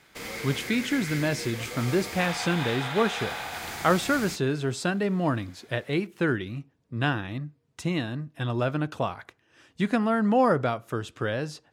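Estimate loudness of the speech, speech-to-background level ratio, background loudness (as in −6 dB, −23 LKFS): −27.5 LKFS, 6.5 dB, −34.0 LKFS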